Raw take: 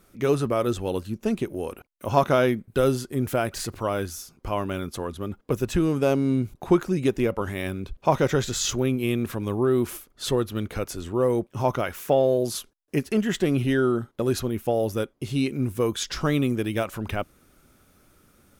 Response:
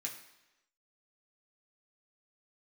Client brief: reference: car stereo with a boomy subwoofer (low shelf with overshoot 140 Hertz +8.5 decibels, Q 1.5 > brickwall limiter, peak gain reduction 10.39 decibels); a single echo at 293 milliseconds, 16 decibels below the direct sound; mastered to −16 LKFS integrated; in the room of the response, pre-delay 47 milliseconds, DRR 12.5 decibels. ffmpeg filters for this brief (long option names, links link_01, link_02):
-filter_complex "[0:a]aecho=1:1:293:0.158,asplit=2[link_01][link_02];[1:a]atrim=start_sample=2205,adelay=47[link_03];[link_02][link_03]afir=irnorm=-1:irlink=0,volume=-11.5dB[link_04];[link_01][link_04]amix=inputs=2:normalize=0,lowshelf=frequency=140:width_type=q:width=1.5:gain=8.5,volume=11dB,alimiter=limit=-6dB:level=0:latency=1"